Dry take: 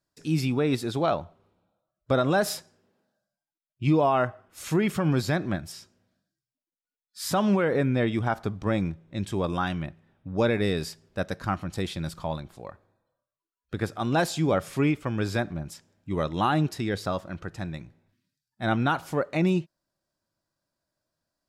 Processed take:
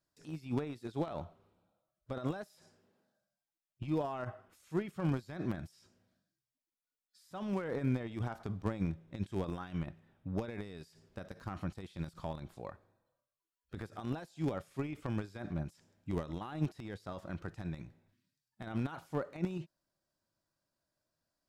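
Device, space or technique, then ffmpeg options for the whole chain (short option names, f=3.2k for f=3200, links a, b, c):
de-esser from a sidechain: -filter_complex "[0:a]asplit=2[a][b];[b]highpass=5.8k,apad=whole_len=947426[c];[a][c]sidechaincompress=threshold=-60dB:ratio=20:attack=0.56:release=33,volume=-3.5dB"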